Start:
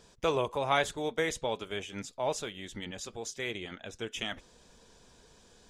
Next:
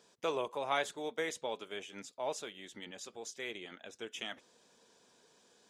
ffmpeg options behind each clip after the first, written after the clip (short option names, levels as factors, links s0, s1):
-af "highpass=240,volume=0.531"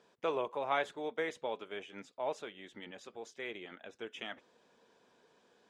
-af "bass=f=250:g=-2,treble=f=4000:g=-15,volume=1.12"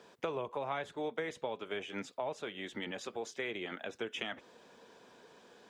-filter_complex "[0:a]acrossover=split=160[s0][s1];[s1]acompressor=threshold=0.00631:ratio=6[s2];[s0][s2]amix=inputs=2:normalize=0,volume=2.82"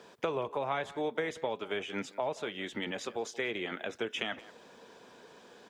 -filter_complex "[0:a]asplit=2[s0][s1];[s1]adelay=180,highpass=300,lowpass=3400,asoftclip=type=hard:threshold=0.0316,volume=0.126[s2];[s0][s2]amix=inputs=2:normalize=0,volume=1.58"